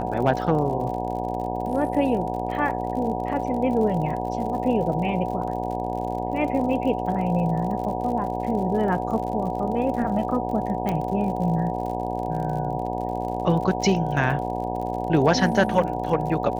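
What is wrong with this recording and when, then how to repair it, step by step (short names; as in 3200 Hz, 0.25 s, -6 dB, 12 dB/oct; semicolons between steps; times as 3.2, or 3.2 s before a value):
buzz 60 Hz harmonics 16 -29 dBFS
crackle 58/s -33 dBFS
tone 740 Hz -30 dBFS
10.89 pop -13 dBFS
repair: de-click; notch 740 Hz, Q 30; de-hum 60 Hz, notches 16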